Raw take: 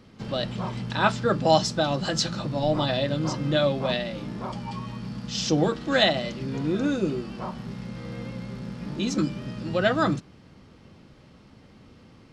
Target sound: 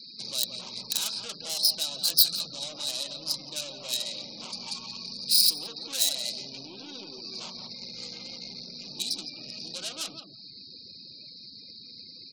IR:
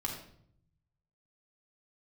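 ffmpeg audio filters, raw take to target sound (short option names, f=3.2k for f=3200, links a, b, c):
-filter_complex "[0:a]asplit=2[a][b];[b]aeval=exprs='0.188*(abs(mod(val(0)/0.188+3,4)-2)-1)':c=same,volume=-4dB[c];[a][c]amix=inputs=2:normalize=0,acompressor=threshold=-32dB:ratio=4,asuperstop=centerf=3100:order=20:qfactor=2.6,aresample=11025,aresample=44100,aeval=exprs='(tanh(63.1*val(0)+0.25)-tanh(0.25))/63.1':c=same,aemphasis=mode=production:type=bsi,asplit=2[d][e];[e]adelay=171,lowpass=f=1.2k:p=1,volume=-4.5dB,asplit=2[f][g];[g]adelay=171,lowpass=f=1.2k:p=1,volume=0.24,asplit=2[h][i];[i]adelay=171,lowpass=f=1.2k:p=1,volume=0.24[j];[f][h][j]amix=inputs=3:normalize=0[k];[d][k]amix=inputs=2:normalize=0,aexciter=amount=7.5:drive=8.5:freq=2.8k,afftfilt=real='re*gte(hypot(re,im),0.00891)':imag='im*gte(hypot(re,im),0.00891)':win_size=1024:overlap=0.75,volume=-5.5dB"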